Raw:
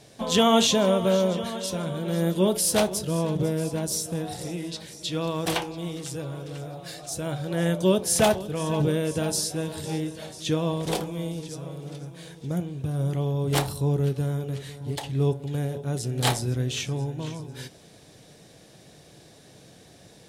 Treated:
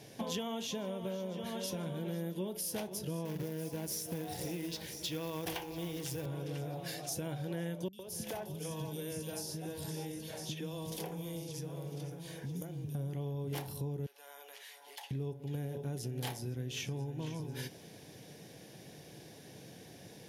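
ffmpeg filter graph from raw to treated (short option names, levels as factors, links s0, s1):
-filter_complex "[0:a]asettb=1/sr,asplit=3[s0][s1][s2];[s0]atrim=end=3.254[s3];[s1]atrim=start=3.25:end=6.26,asetpts=PTS-STARTPTS,afade=t=in:d=0.004:c=qsin,afade=t=out:st=3.006:d=0.004:c=qsin,asubboost=boost=10.5:cutoff=63,acrusher=bits=3:mode=log:mix=0:aa=0.000001[s4];[s2]atrim=start=6.256[s5];[s3][s4]acrossfade=d=0.004:c1=hsin:c2=qsin[s6];[s6][s5]acrossfade=d=0.004:c1=qsin:c2=hsin,asettb=1/sr,asplit=3[s7][s8][s9];[s7]atrim=end=7.884[s10];[s8]atrim=start=7.88:end=12.95,asetpts=PTS-STARTPTS,afade=t=in:d=0.004:c=qsin,afade=t=out:st=5.066:d=0.004:c=qsin,acrossover=split=85|3500[s11][s12][s13];[s11]acompressor=threshold=0.00224:ratio=4[s14];[s12]acompressor=threshold=0.0141:ratio=4[s15];[s13]acompressor=threshold=0.00794:ratio=4[s16];[s14][s15][s16]amix=inputs=3:normalize=0,acrossover=split=260|2600[s17][s18][s19];[s19]adelay=50[s20];[s18]adelay=110[s21];[s17][s21][s20]amix=inputs=3:normalize=0,atrim=end_sample=223587[s22];[s9]atrim=start=12.946[s23];[s10][s22]acrossfade=d=0.004:c1=hsin:c2=qsin[s24];[s24][s23]acrossfade=d=0.004:c1=qsin:c2=hsin,asettb=1/sr,asplit=3[s25][s26][s27];[s25]atrim=end=14.064[s28];[s26]atrim=start=14.06:end=15.11,asetpts=PTS-STARTPTS,afade=t=in:d=0.004:c=qsin,afade=t=out:st=1.046:d=0.004:c=qsin,highpass=f=740:w=0.5412,highpass=f=740:w=1.3066,acompressor=threshold=0.00355:ratio=2:attack=3.2:release=140:knee=1:detection=peak[s29];[s27]atrim=start=15.106[s30];[s28][s29]acrossfade=d=0.004:c1=hsin:c2=qsin[s31];[s31][s30]acrossfade=d=0.004:c1=qsin:c2=hsin,equalizer=f=630:t=o:w=0.33:g=-4,equalizer=f=1250:t=o:w=0.33:g=-9,equalizer=f=4000:t=o:w=0.33:g=-6,equalizer=f=8000:t=o:w=0.33:g=-10,equalizer=f=12500:t=o:w=0.33:g=6,acompressor=threshold=0.0178:ratio=12,highpass=94"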